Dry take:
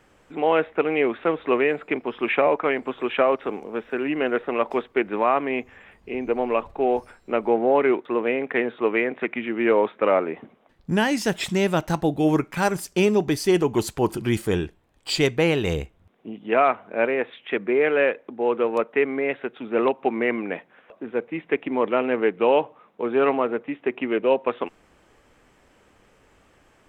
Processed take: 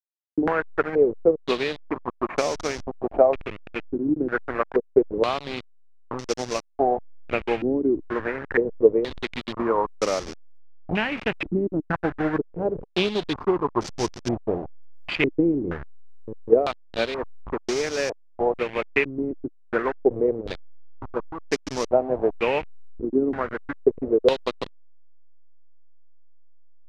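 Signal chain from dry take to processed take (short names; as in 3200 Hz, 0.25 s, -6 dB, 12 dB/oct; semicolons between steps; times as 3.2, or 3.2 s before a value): level-crossing sampler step -22 dBFS; transient shaper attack +6 dB, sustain -2 dB; stepped low-pass 2.1 Hz 310–5700 Hz; gain -7 dB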